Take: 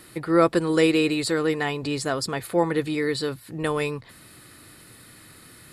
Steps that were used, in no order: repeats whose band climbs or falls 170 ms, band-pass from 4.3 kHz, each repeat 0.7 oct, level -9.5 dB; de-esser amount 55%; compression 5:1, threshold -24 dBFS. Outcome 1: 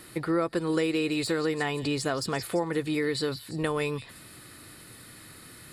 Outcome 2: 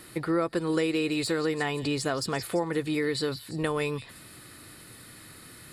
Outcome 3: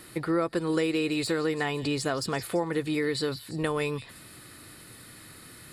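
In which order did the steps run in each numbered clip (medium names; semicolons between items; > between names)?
repeats whose band climbs or falls > de-esser > compression; repeats whose band climbs or falls > compression > de-esser; de-esser > repeats whose band climbs or falls > compression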